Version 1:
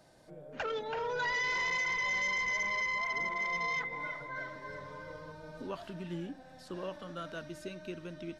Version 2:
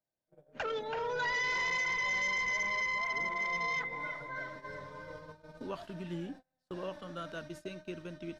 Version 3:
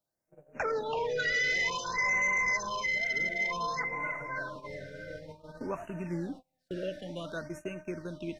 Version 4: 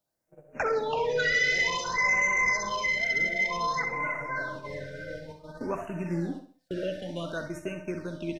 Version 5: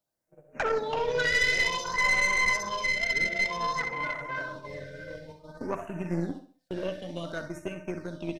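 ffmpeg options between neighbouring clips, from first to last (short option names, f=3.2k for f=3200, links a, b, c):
-af "agate=range=-33dB:threshold=-46dB:ratio=16:detection=peak"
-af "afftfilt=real='re*(1-between(b*sr/1024,930*pow(4200/930,0.5+0.5*sin(2*PI*0.55*pts/sr))/1.41,930*pow(4200/930,0.5+0.5*sin(2*PI*0.55*pts/sr))*1.41))':imag='im*(1-between(b*sr/1024,930*pow(4200/930,0.5+0.5*sin(2*PI*0.55*pts/sr))/1.41,930*pow(4200/930,0.5+0.5*sin(2*PI*0.55*pts/sr))*1.41))':win_size=1024:overlap=0.75,volume=4.5dB"
-af "aecho=1:1:65|130|195|260:0.316|0.117|0.0433|0.016,volume=3.5dB"
-af "aeval=exprs='0.178*(cos(1*acos(clip(val(0)/0.178,-1,1)))-cos(1*PI/2))+0.0562*(cos(2*acos(clip(val(0)/0.178,-1,1)))-cos(2*PI/2))+0.00631*(cos(7*acos(clip(val(0)/0.178,-1,1)))-cos(7*PI/2))':c=same"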